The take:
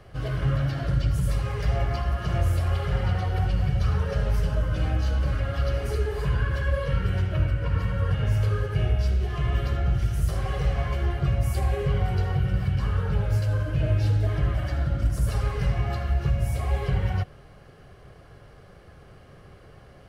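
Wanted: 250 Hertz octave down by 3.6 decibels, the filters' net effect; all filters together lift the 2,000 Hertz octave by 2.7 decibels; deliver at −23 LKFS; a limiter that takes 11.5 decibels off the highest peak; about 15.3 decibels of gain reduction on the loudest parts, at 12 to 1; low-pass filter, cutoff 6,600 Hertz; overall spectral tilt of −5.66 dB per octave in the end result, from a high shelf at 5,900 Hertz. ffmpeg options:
ffmpeg -i in.wav -af "lowpass=6600,equalizer=frequency=250:width_type=o:gain=-8,equalizer=frequency=2000:width_type=o:gain=4,highshelf=frequency=5900:gain=-4,acompressor=threshold=-35dB:ratio=12,volume=24dB,alimiter=limit=-14dB:level=0:latency=1" out.wav

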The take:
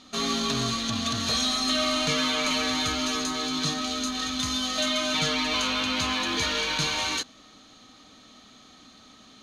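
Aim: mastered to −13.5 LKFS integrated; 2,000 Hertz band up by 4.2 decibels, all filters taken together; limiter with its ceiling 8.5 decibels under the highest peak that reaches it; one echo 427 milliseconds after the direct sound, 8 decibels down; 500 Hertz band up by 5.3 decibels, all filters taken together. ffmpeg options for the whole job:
ffmpeg -i in.wav -af "equalizer=frequency=500:width_type=o:gain=6.5,equalizer=frequency=2000:width_type=o:gain=5,alimiter=limit=-20.5dB:level=0:latency=1,aecho=1:1:427:0.398,volume=13.5dB" out.wav

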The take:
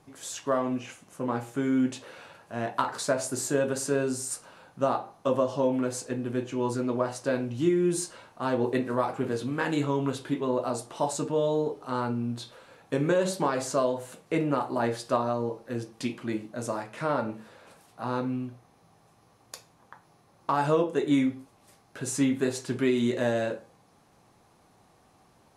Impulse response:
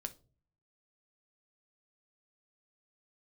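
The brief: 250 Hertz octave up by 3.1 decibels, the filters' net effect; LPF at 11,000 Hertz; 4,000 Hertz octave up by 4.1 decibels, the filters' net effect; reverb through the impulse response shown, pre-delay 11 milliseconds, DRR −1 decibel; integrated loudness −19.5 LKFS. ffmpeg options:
-filter_complex "[0:a]lowpass=11000,equalizer=frequency=250:width_type=o:gain=3.5,equalizer=frequency=4000:width_type=o:gain=5,asplit=2[link_01][link_02];[1:a]atrim=start_sample=2205,adelay=11[link_03];[link_02][link_03]afir=irnorm=-1:irlink=0,volume=3.5dB[link_04];[link_01][link_04]amix=inputs=2:normalize=0,volume=3dB"

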